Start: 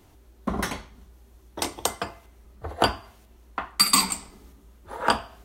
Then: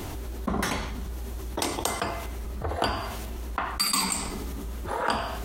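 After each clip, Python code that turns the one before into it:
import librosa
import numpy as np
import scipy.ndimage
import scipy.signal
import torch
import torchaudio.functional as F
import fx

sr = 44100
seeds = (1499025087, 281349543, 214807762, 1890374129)

y = fx.env_flatten(x, sr, amount_pct=70)
y = y * 10.0 ** (-8.0 / 20.0)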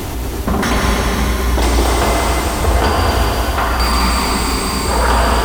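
y = fx.leveller(x, sr, passes=3)
y = fx.rev_plate(y, sr, seeds[0], rt60_s=5.0, hf_ratio=1.0, predelay_ms=115, drr_db=-2.5)
y = fx.slew_limit(y, sr, full_power_hz=400.0)
y = y * 10.0 ** (1.5 / 20.0)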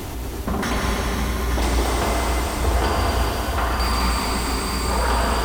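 y = x + 10.0 ** (-8.0 / 20.0) * np.pad(x, (int(883 * sr / 1000.0), 0))[:len(x)]
y = y * 10.0 ** (-7.5 / 20.0)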